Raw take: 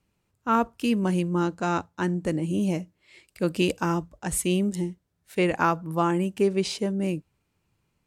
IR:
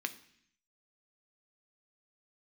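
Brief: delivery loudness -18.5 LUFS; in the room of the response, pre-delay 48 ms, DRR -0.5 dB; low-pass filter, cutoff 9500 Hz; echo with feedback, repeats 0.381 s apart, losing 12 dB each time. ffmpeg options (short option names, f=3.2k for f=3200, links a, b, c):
-filter_complex "[0:a]lowpass=9.5k,aecho=1:1:381|762|1143:0.251|0.0628|0.0157,asplit=2[a][b];[1:a]atrim=start_sample=2205,adelay=48[c];[b][c]afir=irnorm=-1:irlink=0,volume=-1.5dB[d];[a][d]amix=inputs=2:normalize=0,volume=5dB"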